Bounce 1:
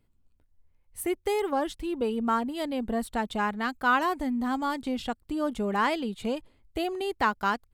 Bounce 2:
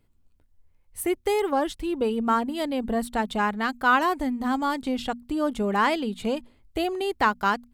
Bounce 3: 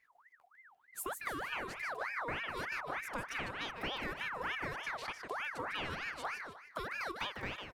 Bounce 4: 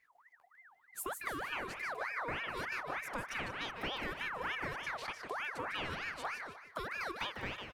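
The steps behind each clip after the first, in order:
notches 60/120/180/240 Hz; gain +3.5 dB
compressor 6:1, threshold -32 dBFS, peak gain reduction 15.5 dB; feedback echo 0.152 s, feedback 35%, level -6.5 dB; ring modulator with a swept carrier 1400 Hz, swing 50%, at 3.3 Hz; gain -3.5 dB
echo 0.179 s -15.5 dB

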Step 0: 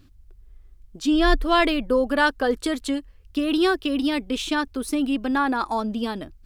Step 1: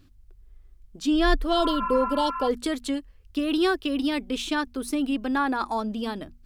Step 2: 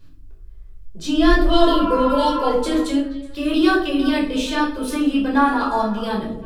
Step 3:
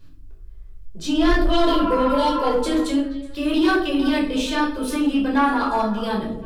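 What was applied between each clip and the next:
notches 60/120/180/240 Hz; spectral repair 1.55–2.45, 970–2800 Hz before; gain -2.5 dB
in parallel at -6 dB: overloaded stage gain 17 dB; on the sum: delay with a stepping band-pass 0.119 s, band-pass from 180 Hz, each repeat 1.4 oct, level -6.5 dB; shoebox room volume 600 m³, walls furnished, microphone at 5.1 m; gain -5 dB
soft clip -10.5 dBFS, distortion -15 dB

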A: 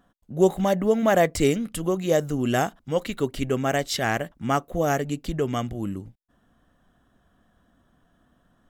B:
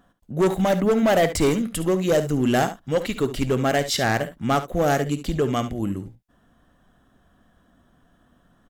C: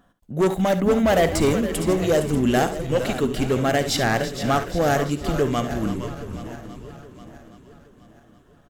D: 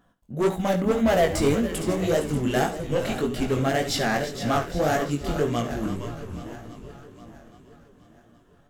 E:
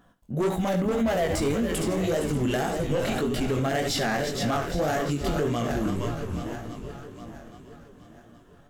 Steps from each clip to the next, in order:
hard clip -18 dBFS, distortion -11 dB; early reflections 54 ms -17 dB, 70 ms -13 dB; gain +3.5 dB
regenerating reverse delay 0.41 s, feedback 63%, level -13 dB; frequency-shifting echo 0.462 s, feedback 36%, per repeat -120 Hz, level -10.5 dB
chorus 1.8 Hz, delay 17 ms, depth 6.1 ms
limiter -22 dBFS, peak gain reduction 11 dB; gain +4 dB

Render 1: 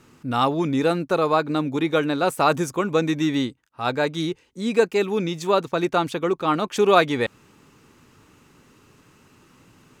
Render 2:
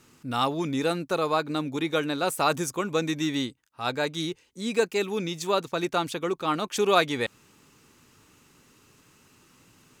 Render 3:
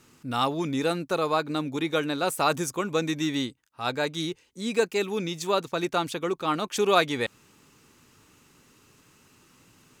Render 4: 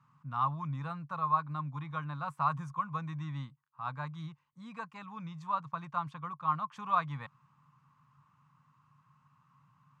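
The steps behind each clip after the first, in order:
high shelf 3000 Hz +9 dB; gain -6 dB
nothing audible
double band-pass 390 Hz, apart 2.9 oct; gain +3 dB

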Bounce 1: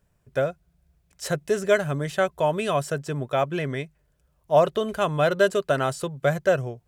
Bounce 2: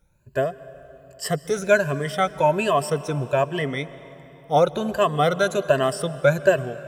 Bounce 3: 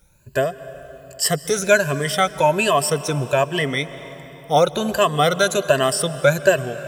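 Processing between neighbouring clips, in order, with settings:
moving spectral ripple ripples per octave 1.4, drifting +1.3 Hz, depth 16 dB; reverb RT60 3.5 s, pre-delay 0.119 s, DRR 16 dB
high shelf 2600 Hz +10 dB; in parallel at -1 dB: compressor, threshold -29 dBFS, peak gain reduction 17.5 dB

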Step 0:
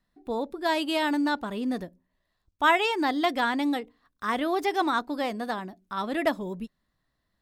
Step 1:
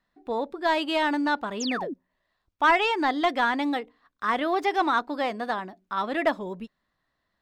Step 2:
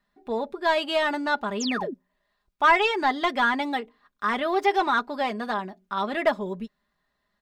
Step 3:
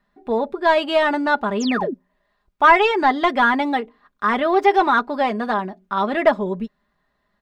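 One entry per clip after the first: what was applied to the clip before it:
overdrive pedal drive 10 dB, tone 2400 Hz, clips at -9.5 dBFS; painted sound fall, 1.6–1.94, 230–7700 Hz -32 dBFS; bell 11000 Hz -3.5 dB 0.56 oct
comb 4.9 ms, depth 60%
high shelf 3000 Hz -10 dB; gain +7.5 dB

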